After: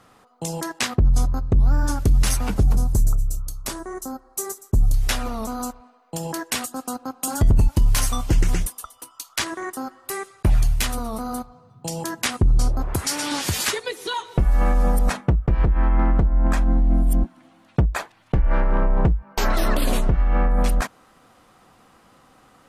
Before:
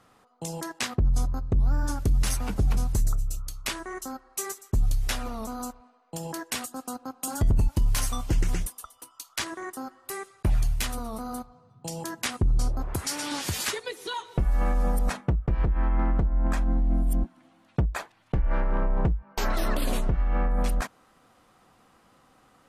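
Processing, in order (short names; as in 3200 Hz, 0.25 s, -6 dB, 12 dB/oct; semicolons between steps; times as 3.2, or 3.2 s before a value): 2.63–4.94 bell 2500 Hz -13.5 dB 1.7 oct; gain +6 dB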